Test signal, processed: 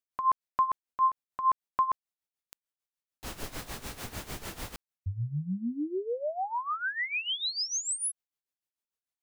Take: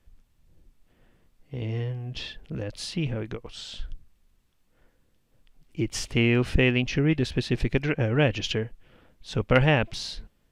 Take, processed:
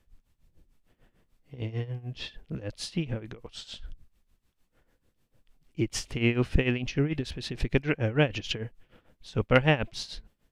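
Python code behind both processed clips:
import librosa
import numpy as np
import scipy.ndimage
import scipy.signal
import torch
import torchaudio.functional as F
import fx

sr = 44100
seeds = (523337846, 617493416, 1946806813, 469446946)

y = x * (1.0 - 0.81 / 2.0 + 0.81 / 2.0 * np.cos(2.0 * np.pi * 6.7 * (np.arange(len(x)) / sr)))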